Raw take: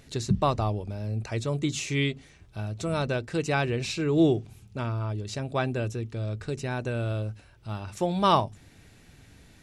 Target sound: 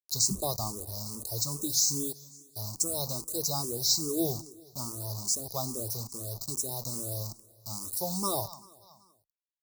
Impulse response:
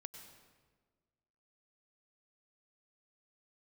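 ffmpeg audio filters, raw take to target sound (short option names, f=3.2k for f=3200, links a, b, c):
-filter_complex "[0:a]highshelf=f=2.8k:g=11.5,acrusher=bits=5:mix=0:aa=0.000001,aexciter=amount=4.6:drive=4.3:freq=4.3k,asuperstop=centerf=2200:order=12:qfactor=0.77,asplit=2[a][b];[b]aecho=0:1:191|382|573|764:0.0841|0.0488|0.0283|0.0164[c];[a][c]amix=inputs=2:normalize=0,asplit=2[d][e];[e]afreqshift=2.4[f];[d][f]amix=inputs=2:normalize=1,volume=-6.5dB"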